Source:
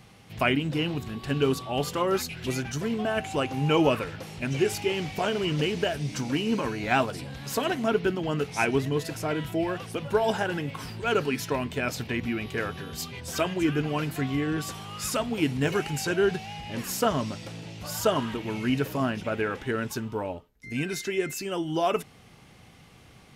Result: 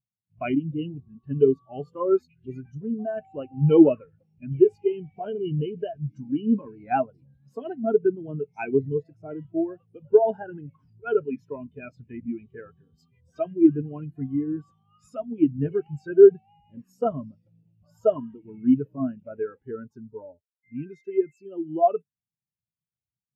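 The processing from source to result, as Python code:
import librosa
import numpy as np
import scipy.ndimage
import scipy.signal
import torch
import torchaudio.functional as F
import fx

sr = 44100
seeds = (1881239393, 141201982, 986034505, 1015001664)

y = fx.spectral_expand(x, sr, expansion=2.5)
y = y * librosa.db_to_amplitude(6.5)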